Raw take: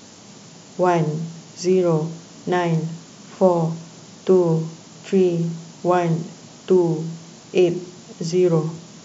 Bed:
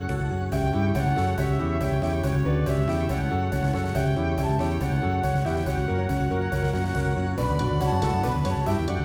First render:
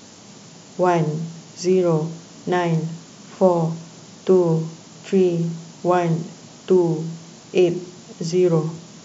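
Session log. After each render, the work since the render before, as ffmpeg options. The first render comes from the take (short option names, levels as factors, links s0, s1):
-af anull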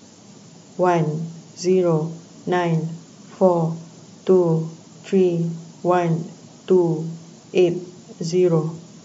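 -af "afftdn=nr=6:nf=-44"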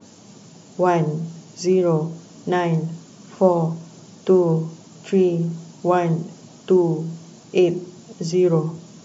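-af "bandreject=f=2000:w=25,adynamicequalizer=threshold=0.0112:dfrequency=2200:dqfactor=0.7:tfrequency=2200:tqfactor=0.7:attack=5:release=100:ratio=0.375:range=2.5:mode=cutabove:tftype=highshelf"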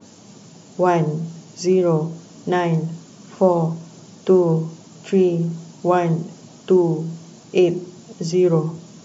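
-af "volume=1.12,alimiter=limit=0.708:level=0:latency=1"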